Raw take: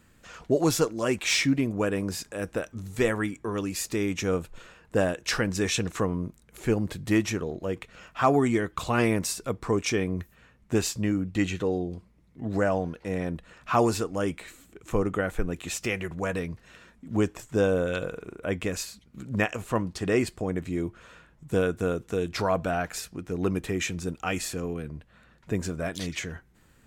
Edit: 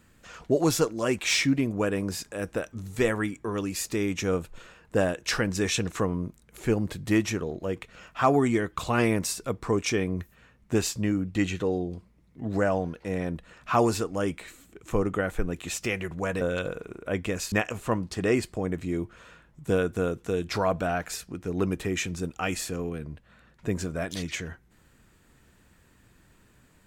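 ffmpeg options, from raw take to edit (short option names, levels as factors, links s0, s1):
-filter_complex "[0:a]asplit=3[s0][s1][s2];[s0]atrim=end=16.412[s3];[s1]atrim=start=17.778:end=18.892[s4];[s2]atrim=start=19.358[s5];[s3][s4]acrossfade=d=0.004:c1=hsin:c2=hsin[s6];[s6][s5]acrossfade=d=0.004:c1=hsin:c2=hsin"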